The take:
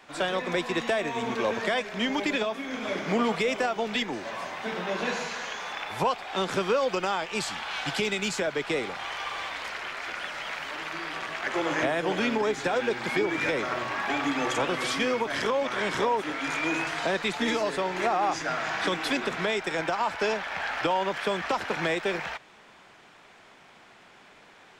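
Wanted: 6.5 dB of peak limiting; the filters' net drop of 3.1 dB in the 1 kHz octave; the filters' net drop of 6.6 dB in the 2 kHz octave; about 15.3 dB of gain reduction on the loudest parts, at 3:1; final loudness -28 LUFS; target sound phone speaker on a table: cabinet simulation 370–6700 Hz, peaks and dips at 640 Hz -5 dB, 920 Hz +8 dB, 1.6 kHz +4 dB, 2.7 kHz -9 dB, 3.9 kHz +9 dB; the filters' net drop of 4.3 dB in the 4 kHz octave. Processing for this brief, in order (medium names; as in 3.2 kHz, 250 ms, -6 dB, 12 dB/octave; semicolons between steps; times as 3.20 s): peaking EQ 1 kHz -7 dB; peaking EQ 2 kHz -6.5 dB; peaking EQ 4 kHz -5.5 dB; compression 3:1, threshold -46 dBFS; peak limiter -37 dBFS; cabinet simulation 370–6700 Hz, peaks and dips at 640 Hz -5 dB, 920 Hz +8 dB, 1.6 kHz +4 dB, 2.7 kHz -9 dB, 3.9 kHz +9 dB; trim +18.5 dB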